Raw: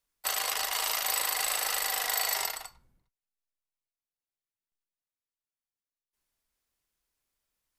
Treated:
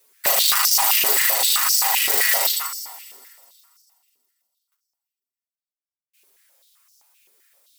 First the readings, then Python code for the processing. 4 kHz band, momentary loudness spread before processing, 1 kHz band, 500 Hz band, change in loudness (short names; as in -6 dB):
+11.5 dB, 6 LU, +9.0 dB, +10.5 dB, +12.5 dB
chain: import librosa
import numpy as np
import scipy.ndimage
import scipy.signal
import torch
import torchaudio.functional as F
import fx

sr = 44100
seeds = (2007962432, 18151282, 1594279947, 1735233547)

y = fx.law_mismatch(x, sr, coded='mu')
y = (np.mod(10.0 ** (22.0 / 20.0) * y + 1.0, 2.0) - 1.0) / 10.0 ** (22.0 / 20.0)
y = fx.high_shelf(y, sr, hz=7900.0, db=9.5)
y = y + 0.77 * np.pad(y, (int(7.3 * sr / 1000.0), 0))[:len(y)]
y = fx.rider(y, sr, range_db=10, speed_s=2.0)
y = fx.echo_wet_highpass(y, sr, ms=163, feedback_pct=66, hz=4000.0, wet_db=-17)
y = fx.rev_fdn(y, sr, rt60_s=2.1, lf_ratio=1.4, hf_ratio=0.8, size_ms=38.0, drr_db=6.5)
y = fx.filter_held_highpass(y, sr, hz=7.7, low_hz=390.0, high_hz=5400.0)
y = y * 10.0 ** (2.5 / 20.0)